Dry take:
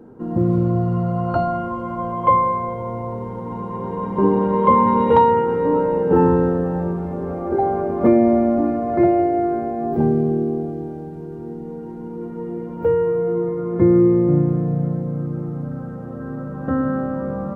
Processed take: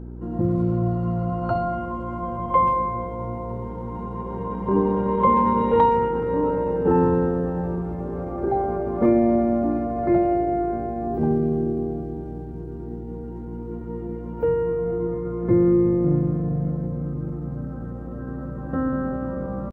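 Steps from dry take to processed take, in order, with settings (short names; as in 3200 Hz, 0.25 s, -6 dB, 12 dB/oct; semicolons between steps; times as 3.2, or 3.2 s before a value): buzz 60 Hz, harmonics 6, -32 dBFS -5 dB/oct; speakerphone echo 0.1 s, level -22 dB; tempo 0.89×; gain -4 dB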